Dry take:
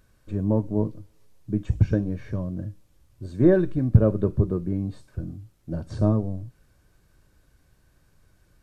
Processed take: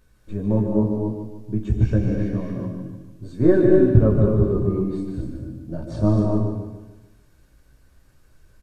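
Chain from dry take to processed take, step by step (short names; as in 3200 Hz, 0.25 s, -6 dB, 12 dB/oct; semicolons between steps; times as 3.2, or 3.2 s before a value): chorus voices 6, 0.35 Hz, delay 17 ms, depth 2.4 ms; feedback echo 0.148 s, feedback 42%, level -7.5 dB; non-linear reverb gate 0.28 s rising, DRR 2 dB; gain +3.5 dB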